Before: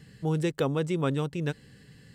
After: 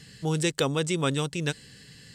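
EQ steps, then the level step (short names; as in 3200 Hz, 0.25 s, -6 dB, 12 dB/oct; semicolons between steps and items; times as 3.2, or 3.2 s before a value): bell 5700 Hz +13 dB 2.7 oct; dynamic EQ 8500 Hz, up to +5 dB, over -52 dBFS, Q 2.7; 0.0 dB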